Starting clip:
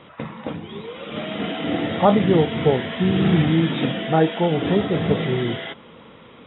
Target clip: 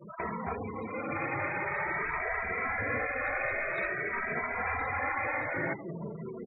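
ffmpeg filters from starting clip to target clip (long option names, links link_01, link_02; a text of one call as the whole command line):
ffmpeg -i in.wav -filter_complex "[0:a]acontrast=44,asuperstop=centerf=3100:order=12:qfactor=2.4,aecho=1:1:944:0.0794,acrossover=split=3100[link_01][link_02];[link_02]acompressor=threshold=-55dB:ratio=4:attack=1:release=60[link_03];[link_01][link_03]amix=inputs=2:normalize=0,asettb=1/sr,asplit=3[link_04][link_05][link_06];[link_04]atrim=end=2.174[link_07];[link_05]atrim=start=2.17:end=4.4,asetpts=PTS-STARTPTS,afade=type=in:duration=0.004:curve=qsin,afade=type=out:start_time=2.226:duration=0.004:curve=qsin,equalizer=frequency=890:width_type=o:width=0.26:gain=-14.5[link_08];[link_06]atrim=start=4.396[link_09];[link_07][link_08]acrossfade=duration=0.004:curve1=hsin:curve2=qsin[link_10];[link_10][link_09]acrossfade=duration=0.004:curve1=qsin:curve2=hsin,bandreject=frequency=62.23:width_type=h:width=4,bandreject=frequency=124.46:width_type=h:width=4,bandreject=frequency=186.69:width_type=h:width=4,bandreject=frequency=248.92:width_type=h:width=4,bandreject=frequency=311.15:width_type=h:width=4,bandreject=frequency=373.38:width_type=h:width=4,bandreject=frequency=435.61:width_type=h:width=4,bandreject=frequency=497.84:width_type=h:width=4,bandreject=frequency=560.07:width_type=h:width=4,bandreject=frequency=622.3:width_type=h:width=4,bandreject=frequency=684.53:width_type=h:width=4,bandreject=frequency=746.76:width_type=h:width=4,bandreject=frequency=808.99:width_type=h:width=4,bandreject=frequency=871.22:width_type=h:width=4,bandreject=frequency=933.45:width_type=h:width=4,bandreject=frequency=995.68:width_type=h:width=4,bandreject=frequency=1057.91:width_type=h:width=4,bandreject=frequency=1120.14:width_type=h:width=4,bandreject=frequency=1182.37:width_type=h:width=4,bandreject=frequency=1244.6:width_type=h:width=4,bandreject=frequency=1306.83:width_type=h:width=4,bandreject=frequency=1369.06:width_type=h:width=4,bandreject=frequency=1431.29:width_type=h:width=4,bandreject=frequency=1493.52:width_type=h:width=4,bandreject=frequency=1555.75:width_type=h:width=4,bandreject=frequency=1617.98:width_type=h:width=4,bandreject=frequency=1680.21:width_type=h:width=4,bandreject=frequency=1742.44:width_type=h:width=4,bandreject=frequency=1804.67:width_type=h:width=4,bandreject=frequency=1866.9:width_type=h:width=4,bandreject=frequency=1929.13:width_type=h:width=4,bandreject=frequency=1991.36:width_type=h:width=4,bandreject=frequency=2053.59:width_type=h:width=4,bandreject=frequency=2115.82:width_type=h:width=4,afftfilt=real='re*gte(hypot(re,im),0.0282)':imag='im*gte(hypot(re,im),0.0282)':win_size=1024:overlap=0.75,equalizer=frequency=1900:width_type=o:width=0.33:gain=3,afftfilt=real='re*lt(hypot(re,im),0.224)':imag='im*lt(hypot(re,im),0.224)':win_size=1024:overlap=0.75,asplit=2[link_11][link_12];[link_12]adelay=2.7,afreqshift=0.49[link_13];[link_11][link_13]amix=inputs=2:normalize=1" out.wav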